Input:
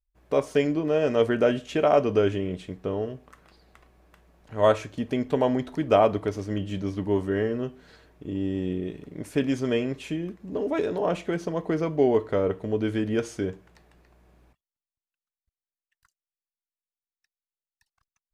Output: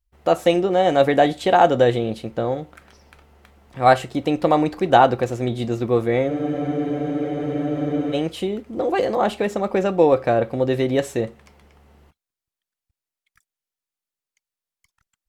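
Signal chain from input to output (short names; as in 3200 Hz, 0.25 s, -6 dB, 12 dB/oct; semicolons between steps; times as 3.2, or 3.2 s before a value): varispeed +20%; spectral freeze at 6.32, 1.83 s; gain +6 dB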